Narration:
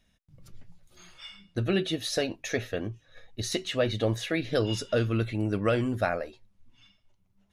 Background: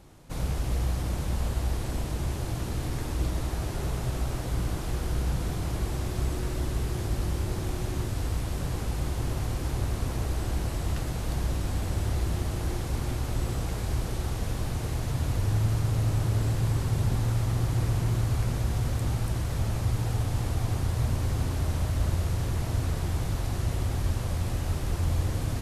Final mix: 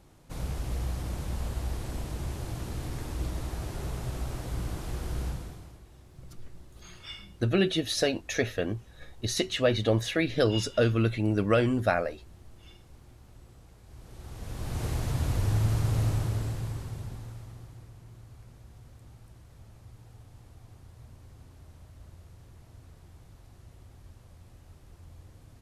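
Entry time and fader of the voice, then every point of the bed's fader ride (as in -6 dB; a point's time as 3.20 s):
5.85 s, +2.0 dB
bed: 5.26 s -4.5 dB
5.85 s -23.5 dB
13.83 s -23.5 dB
14.83 s -0.5 dB
16.04 s -0.5 dB
17.92 s -23.5 dB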